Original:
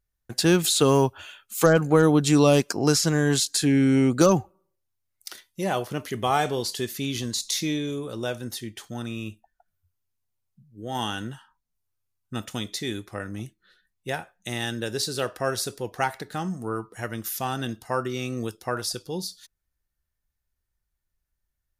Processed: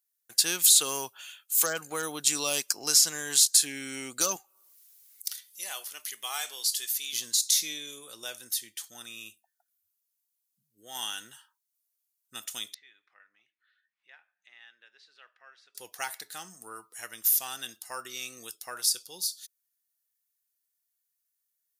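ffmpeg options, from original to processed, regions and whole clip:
-filter_complex "[0:a]asettb=1/sr,asplit=3[a][b][c];[a]atrim=end=4.364[d];[b]atrim=start=4.36:end=7.13,asetpts=PTS-STARTPTS,afade=t=in:d=0.004:c=qsin,afade=t=out:st=2.766:d=0.004:c=qsin,highpass=f=1.2k:p=1,acompressor=mode=upward:threshold=-45dB:ratio=2.5:attack=3.2:release=140:knee=2.83:detection=peak[e];[c]atrim=start=7.126[f];[d][e]acrossfade=d=0.004:c1=hsin:c2=qsin[g];[g][f]acrossfade=d=0.004:c1=qsin:c2=hsin,asettb=1/sr,asplit=3[h][i][j];[h]atrim=end=12.744[k];[i]atrim=start=12.74:end=15.75,asetpts=PTS-STARTPTS,afade=t=in:d=0.004:c=qsin,afade=t=out:st=3.006:d=0.004:c=qsin,lowpass=f=2.1k:w=0.5412,lowpass=f=2.1k:w=1.3066,aderivative,acompressor=mode=upward:threshold=-54dB:ratio=2.5:attack=3.2:release=140:knee=2.83:detection=peak[l];[j]atrim=start=15.746[m];[k][l]acrossfade=d=0.004:c1=hsin:c2=qsin[n];[n][m]acrossfade=d=0.004:c1=qsin:c2=hsin,aderivative,acontrast=43"

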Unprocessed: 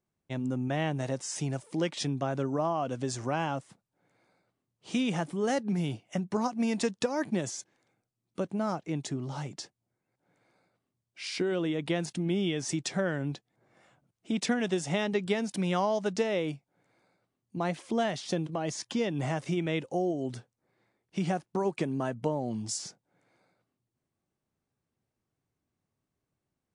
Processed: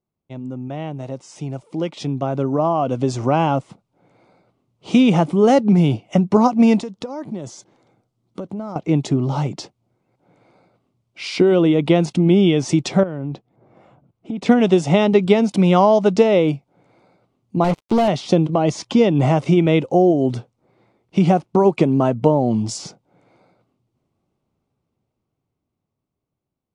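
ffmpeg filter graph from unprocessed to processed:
-filter_complex "[0:a]asettb=1/sr,asplit=3[a][b][c];[a]atrim=end=6.804[d];[b]atrim=start=6.8:end=8.76,asetpts=PTS-STARTPTS,afade=t=in:d=0.004:c=qsin,afade=t=out:st=1.956:d=0.004:c=qsin,equalizer=f=2.5k:t=o:w=0.35:g=-6,acompressor=threshold=-43dB:ratio=4:attack=3.2:release=140:knee=1:detection=peak[e];[c]atrim=start=8.756[f];[d][e]acrossfade=d=0.004:c1=hsin:c2=qsin[g];[g][f]acrossfade=d=0.004:c1=qsin:c2=hsin,asettb=1/sr,asplit=3[h][i][j];[h]atrim=end=13.034[k];[i]atrim=start=13.03:end=14.46,asetpts=PTS-STARTPTS,afade=t=in:d=0.004:c=qsin,afade=t=out:st=1.426:d=0.004:c=qsin,highshelf=f=2.4k:g=-12,acompressor=threshold=-37dB:ratio=12:attack=3.2:release=140:knee=1:detection=peak[l];[j]atrim=start=14.456[m];[k][l]acrossfade=d=0.004:c1=hsin:c2=qsin[n];[n][m]acrossfade=d=0.004:c1=qsin:c2=hsin,asettb=1/sr,asplit=3[o][p][q];[o]atrim=end=17.644[r];[p]atrim=start=17.64:end=18.08,asetpts=PTS-STARTPTS,afade=t=in:d=0.004:c=qsin,afade=t=out:st=0.436:d=0.004:c=qsin,acrusher=bits=5:mix=0:aa=0.5,asoftclip=type=hard:threshold=-27.5dB[s];[q]atrim=start=18.076[t];[r][s]acrossfade=d=0.004:c1=hsin:c2=qsin[u];[u][t]acrossfade=d=0.004:c1=qsin:c2=hsin,aemphasis=mode=reproduction:type=75fm,dynaudnorm=f=480:g=11:m=16.5dB,equalizer=f=1.7k:t=o:w=0.34:g=-13,volume=1dB"

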